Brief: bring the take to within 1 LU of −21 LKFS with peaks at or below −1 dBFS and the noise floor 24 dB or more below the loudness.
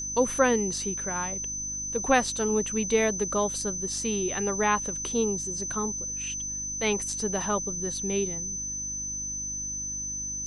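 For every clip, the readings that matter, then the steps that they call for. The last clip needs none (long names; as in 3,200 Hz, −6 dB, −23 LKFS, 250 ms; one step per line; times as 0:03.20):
mains hum 50 Hz; hum harmonics up to 300 Hz; level of the hum −43 dBFS; interfering tone 6,100 Hz; level of the tone −31 dBFS; integrated loudness −27.5 LKFS; sample peak −9.5 dBFS; target loudness −21.0 LKFS
→ hum removal 50 Hz, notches 6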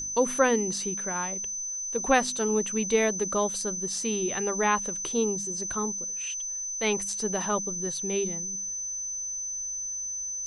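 mains hum none found; interfering tone 6,100 Hz; level of the tone −31 dBFS
→ notch filter 6,100 Hz, Q 30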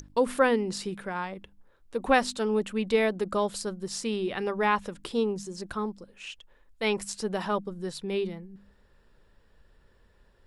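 interfering tone none found; integrated loudness −29.0 LKFS; sample peak −10.0 dBFS; target loudness −21.0 LKFS
→ level +8 dB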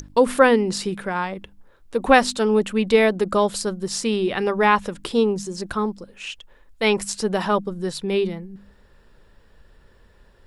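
integrated loudness −21.0 LKFS; sample peak −2.0 dBFS; background noise floor −54 dBFS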